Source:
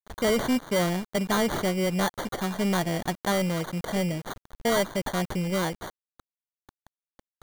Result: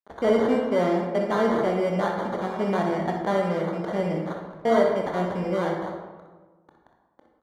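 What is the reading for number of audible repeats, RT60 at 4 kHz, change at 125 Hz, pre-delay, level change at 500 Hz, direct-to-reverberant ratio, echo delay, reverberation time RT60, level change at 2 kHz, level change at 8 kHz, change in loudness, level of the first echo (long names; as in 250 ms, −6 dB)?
1, 0.80 s, −1.5 dB, 22 ms, +5.5 dB, 0.5 dB, 61 ms, 1.3 s, −1.5 dB, below −10 dB, +2.5 dB, −8.5 dB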